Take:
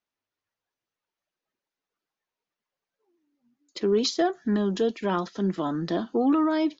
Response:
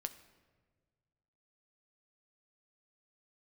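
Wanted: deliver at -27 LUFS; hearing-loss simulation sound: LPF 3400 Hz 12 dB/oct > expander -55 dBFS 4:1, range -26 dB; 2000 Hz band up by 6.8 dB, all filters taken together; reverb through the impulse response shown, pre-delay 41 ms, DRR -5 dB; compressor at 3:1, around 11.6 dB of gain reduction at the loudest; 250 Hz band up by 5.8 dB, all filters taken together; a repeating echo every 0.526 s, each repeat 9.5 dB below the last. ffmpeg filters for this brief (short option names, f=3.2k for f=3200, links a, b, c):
-filter_complex "[0:a]equalizer=f=250:t=o:g=7.5,equalizer=f=2k:t=o:g=9,acompressor=threshold=-28dB:ratio=3,aecho=1:1:526|1052|1578|2104:0.335|0.111|0.0365|0.012,asplit=2[a][b];[1:a]atrim=start_sample=2205,adelay=41[c];[b][c]afir=irnorm=-1:irlink=0,volume=7dB[d];[a][d]amix=inputs=2:normalize=0,lowpass=3.4k,agate=range=-26dB:threshold=-55dB:ratio=4,volume=-4dB"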